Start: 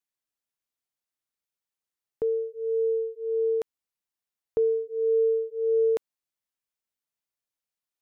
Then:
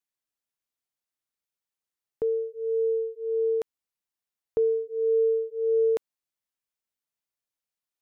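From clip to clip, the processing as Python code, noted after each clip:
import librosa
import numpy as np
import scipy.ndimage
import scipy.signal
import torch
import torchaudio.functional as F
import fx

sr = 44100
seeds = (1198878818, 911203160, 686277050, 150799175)

y = x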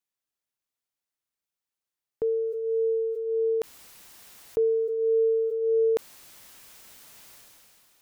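y = fx.sustainer(x, sr, db_per_s=20.0)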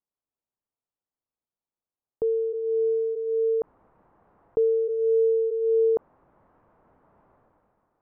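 y = scipy.signal.sosfilt(scipy.signal.butter(4, 1100.0, 'lowpass', fs=sr, output='sos'), x)
y = y * librosa.db_to_amplitude(1.5)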